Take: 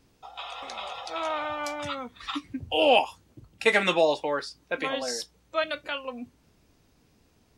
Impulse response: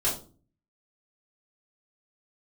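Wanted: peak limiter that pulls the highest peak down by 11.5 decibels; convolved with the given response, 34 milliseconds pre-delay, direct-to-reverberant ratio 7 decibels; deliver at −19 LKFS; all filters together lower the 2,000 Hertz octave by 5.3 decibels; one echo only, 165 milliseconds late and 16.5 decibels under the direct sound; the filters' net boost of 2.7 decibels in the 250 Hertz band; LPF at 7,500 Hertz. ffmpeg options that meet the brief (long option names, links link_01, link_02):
-filter_complex "[0:a]lowpass=7500,equalizer=frequency=250:width_type=o:gain=3.5,equalizer=frequency=2000:width_type=o:gain=-7,alimiter=limit=-21dB:level=0:latency=1,aecho=1:1:165:0.15,asplit=2[link_01][link_02];[1:a]atrim=start_sample=2205,adelay=34[link_03];[link_02][link_03]afir=irnorm=-1:irlink=0,volume=-16dB[link_04];[link_01][link_04]amix=inputs=2:normalize=0,volume=13.5dB"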